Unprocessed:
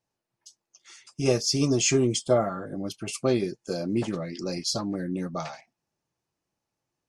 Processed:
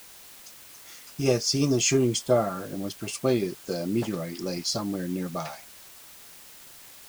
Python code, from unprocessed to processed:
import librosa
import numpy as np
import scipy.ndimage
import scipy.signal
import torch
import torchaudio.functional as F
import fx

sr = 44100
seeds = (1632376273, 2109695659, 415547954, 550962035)

y = fx.quant_dither(x, sr, seeds[0], bits=8, dither='triangular')